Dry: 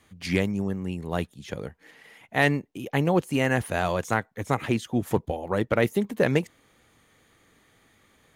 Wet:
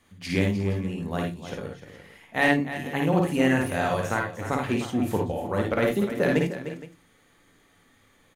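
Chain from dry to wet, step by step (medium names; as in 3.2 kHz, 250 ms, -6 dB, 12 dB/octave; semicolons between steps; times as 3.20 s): multi-tap echo 53/60/81/302/350/467 ms -4.5/-6.5/-9/-11.5/-16.5/-17.5 dB; on a send at -8 dB: reverberation RT60 0.25 s, pre-delay 3 ms; on the sum: trim -3 dB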